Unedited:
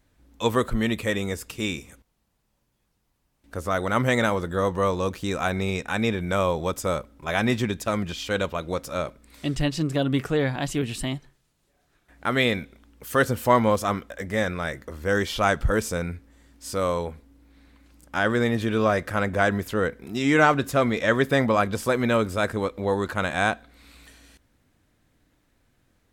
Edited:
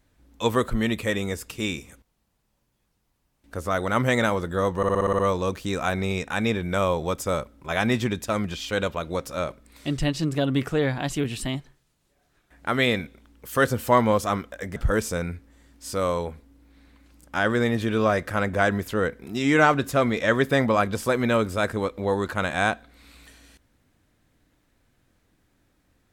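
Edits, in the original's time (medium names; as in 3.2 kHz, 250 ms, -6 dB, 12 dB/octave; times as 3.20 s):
4.77 s: stutter 0.06 s, 8 plays
14.34–15.56 s: delete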